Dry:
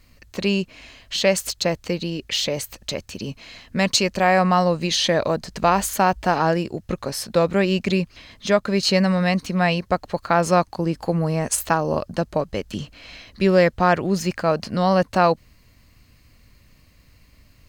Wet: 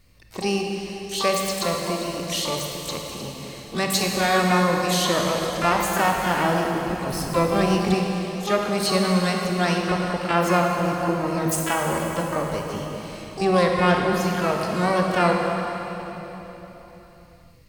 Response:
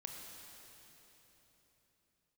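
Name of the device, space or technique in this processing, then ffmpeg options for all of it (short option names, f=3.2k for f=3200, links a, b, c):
shimmer-style reverb: -filter_complex "[0:a]asplit=2[a][b];[b]asetrate=88200,aresample=44100,atempo=0.5,volume=-5dB[c];[a][c]amix=inputs=2:normalize=0[d];[1:a]atrim=start_sample=2205[e];[d][e]afir=irnorm=-1:irlink=0,asettb=1/sr,asplit=3[f][g][h];[f]atrim=end=7.094[i];[g]atrim=start=7.09:end=7.94,asetpts=PTS-STARTPTS,afade=t=in:d=0.004:c=qsin,afade=t=out:st=0.846:d=0.004:c=qsin,lowshelf=f=120:g=10.5[j];[h]atrim=start=7.936[k];[i][j]acrossfade=d=0.004:c1=hsin:c2=qsin[l];[l][k]acrossfade=d=0.004:c1=qsin:c2=hsin"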